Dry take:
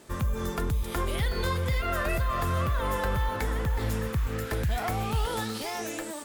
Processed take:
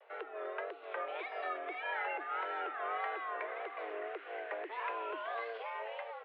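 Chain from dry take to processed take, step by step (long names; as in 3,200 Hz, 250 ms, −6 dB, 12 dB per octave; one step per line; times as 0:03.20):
single-sideband voice off tune +220 Hz 190–2,700 Hz
pitch vibrato 1.7 Hz 94 cents
level −7 dB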